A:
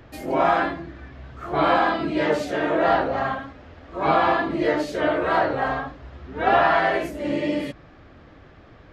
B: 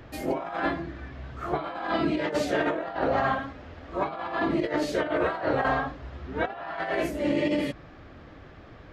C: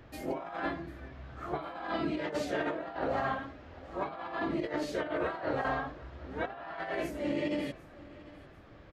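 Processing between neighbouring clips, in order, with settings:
compressor whose output falls as the input rises −24 dBFS, ratio −0.5; level −2.5 dB
repeating echo 745 ms, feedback 38%, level −20 dB; level −7 dB

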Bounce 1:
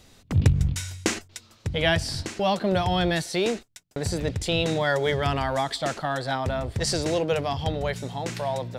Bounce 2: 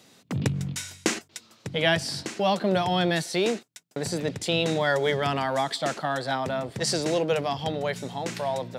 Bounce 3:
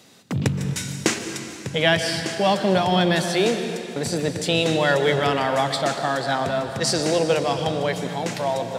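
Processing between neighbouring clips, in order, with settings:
high-pass filter 140 Hz 24 dB per octave
dense smooth reverb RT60 2.7 s, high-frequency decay 0.9×, pre-delay 110 ms, DRR 7 dB; level +4 dB

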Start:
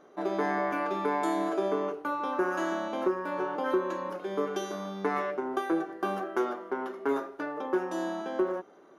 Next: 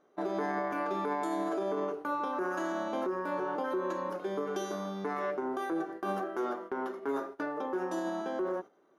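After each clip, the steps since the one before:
noise gate −42 dBFS, range −11 dB
dynamic equaliser 2,600 Hz, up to −4 dB, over −53 dBFS, Q 1.5
brickwall limiter −24.5 dBFS, peak gain reduction 9.5 dB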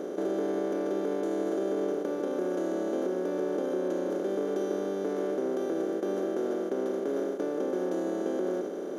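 compressor on every frequency bin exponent 0.2
octave-band graphic EQ 250/500/1,000/2,000 Hz +5/+9/−12/−4 dB
level −8 dB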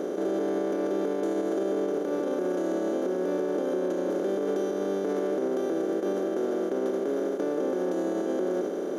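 brickwall limiter −24.5 dBFS, peak gain reduction 6 dB
level +4.5 dB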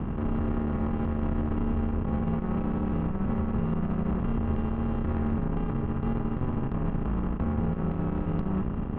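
single-sideband voice off tune −360 Hz 430–3,000 Hz
high-frequency loss of the air 240 metres
harmonic generator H 4 −20 dB, 8 −27 dB, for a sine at −21 dBFS
level +4.5 dB

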